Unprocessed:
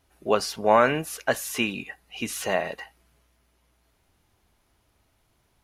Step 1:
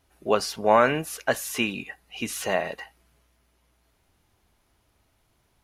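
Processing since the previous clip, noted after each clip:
no processing that can be heard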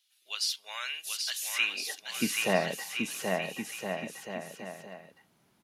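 high-pass filter sweep 3,500 Hz → 170 Hz, 0:01.38–0:02.12
bouncing-ball delay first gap 780 ms, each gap 0.75×, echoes 5
level −2.5 dB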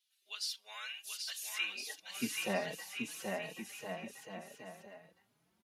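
barber-pole flanger 4.3 ms +2.6 Hz
level −5 dB

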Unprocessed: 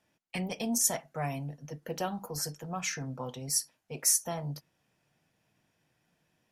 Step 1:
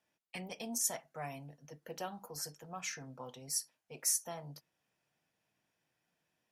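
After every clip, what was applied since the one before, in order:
low-shelf EQ 250 Hz −8.5 dB
level −6.5 dB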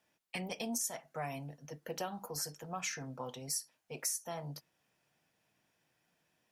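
downward compressor 6 to 1, threshold −39 dBFS, peak gain reduction 11 dB
level +5 dB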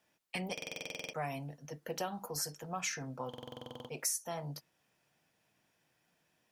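buffer that repeats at 0:00.53/0:03.29, samples 2,048, times 12
level +1.5 dB

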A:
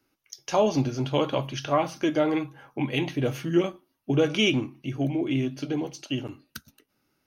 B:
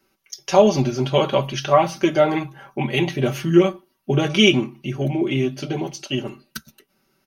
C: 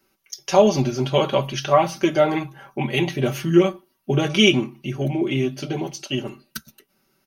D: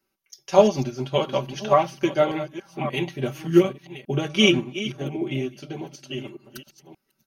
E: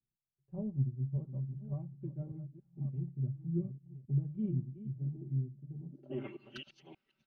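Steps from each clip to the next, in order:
comb filter 5.2 ms, depth 92%; level +4.5 dB
high-shelf EQ 8,200 Hz +4.5 dB; level −1 dB
delay that plays each chunk backwards 579 ms, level −8.5 dB; expander for the loud parts 1.5 to 1, over −30 dBFS
low-pass filter sweep 120 Hz → 3,000 Hz, 0:05.82–0:06.35; level −7.5 dB

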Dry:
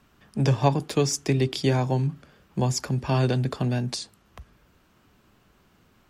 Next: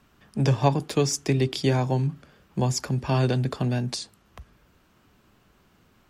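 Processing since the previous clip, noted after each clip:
no processing that can be heard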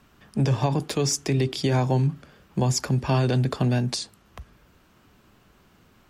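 brickwall limiter −17 dBFS, peak gain reduction 10 dB
level +3 dB

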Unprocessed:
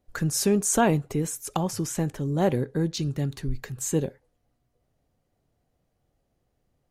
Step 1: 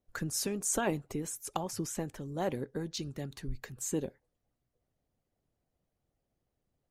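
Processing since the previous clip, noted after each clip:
harmonic and percussive parts rebalanced harmonic −9 dB
level −5.5 dB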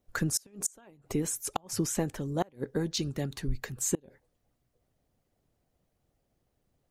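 gate with flip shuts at −23 dBFS, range −31 dB
level +6.5 dB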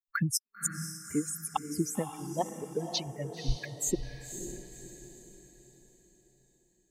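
spectral dynamics exaggerated over time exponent 3
feedback delay with all-pass diffusion 533 ms, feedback 44%, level −8 dB
level +4 dB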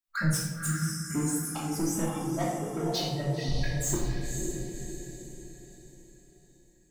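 soft clipping −30.5 dBFS, distortion −7 dB
rectangular room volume 520 cubic metres, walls mixed, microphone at 2.8 metres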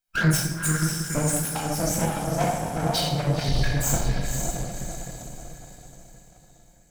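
lower of the sound and its delayed copy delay 1.3 ms
level +7.5 dB

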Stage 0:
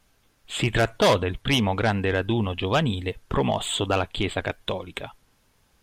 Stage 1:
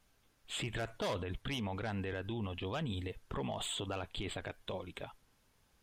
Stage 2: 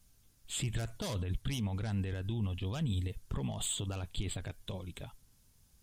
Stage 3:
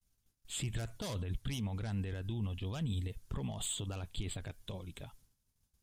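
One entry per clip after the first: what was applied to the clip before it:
brickwall limiter −22.5 dBFS, peak gain reduction 11 dB; level −7.5 dB
bass and treble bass +14 dB, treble +15 dB; level −6 dB
downward expander −56 dBFS; level −2.5 dB

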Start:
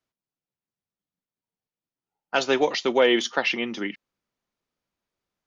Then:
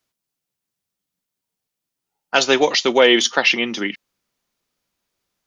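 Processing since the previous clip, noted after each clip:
high-shelf EQ 2,900 Hz +8.5 dB
level +5 dB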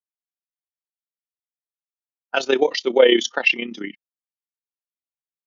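amplitude modulation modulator 32 Hz, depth 55%
every bin expanded away from the loudest bin 1.5 to 1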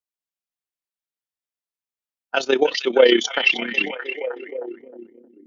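echo through a band-pass that steps 311 ms, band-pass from 2,800 Hz, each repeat −0.7 octaves, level −4 dB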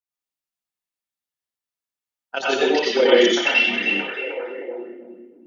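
convolution reverb, pre-delay 79 ms, DRR −6.5 dB
level −6 dB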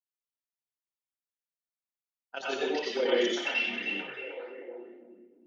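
flanger 2 Hz, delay 6.9 ms, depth 7.2 ms, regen −87%
level −7.5 dB

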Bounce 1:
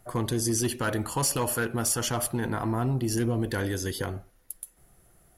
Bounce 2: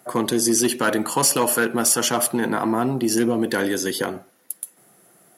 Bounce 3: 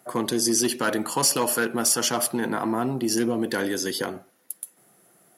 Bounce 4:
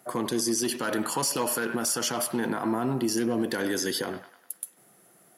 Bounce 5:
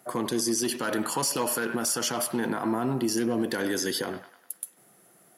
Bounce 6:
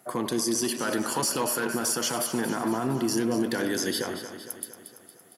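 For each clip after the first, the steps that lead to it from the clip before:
high-pass filter 180 Hz 24 dB per octave; level +8.5 dB
dynamic equaliser 5,000 Hz, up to +5 dB, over −39 dBFS, Q 2.5; level −4 dB
delay with a band-pass on its return 100 ms, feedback 49%, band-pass 1,500 Hz, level −12.5 dB; brickwall limiter −18 dBFS, peak gain reduction 8 dB
no processing that can be heard
repeating echo 230 ms, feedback 58%, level −11 dB

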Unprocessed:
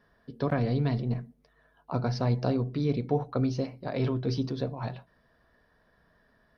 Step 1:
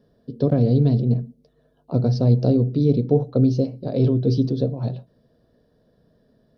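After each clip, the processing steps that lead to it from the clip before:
graphic EQ with 10 bands 125 Hz +9 dB, 250 Hz +7 dB, 500 Hz +10 dB, 1,000 Hz −8 dB, 2,000 Hz −12 dB, 4,000 Hz +5 dB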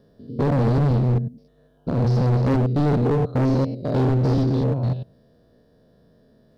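spectrum averaged block by block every 100 ms
gain into a clipping stage and back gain 22 dB
level +5.5 dB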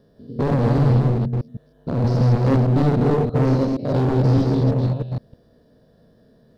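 delay that plays each chunk backwards 157 ms, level −2.5 dB

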